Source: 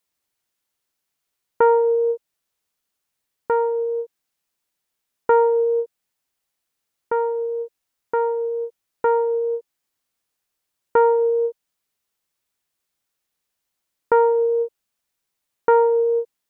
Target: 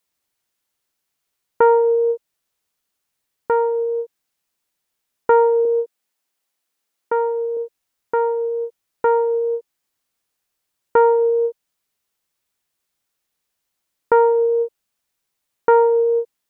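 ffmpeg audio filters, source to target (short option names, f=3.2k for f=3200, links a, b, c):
-filter_complex "[0:a]asettb=1/sr,asplit=3[a][b][c];[a]atrim=end=5.654[d];[b]atrim=start=5.65:end=7.57,asetpts=PTS-STARTPTS,afade=t=in:d=0.004:c=qsin,afade=t=out:st=1.916:d=0.004:c=qsin,highpass=200[e];[c]atrim=start=7.566[f];[d][e]acrossfade=d=0.004:c1=hsin:c2=qsin[g];[g][f]acrossfade=d=0.004:c1=qsin:c2=hsin,volume=2dB"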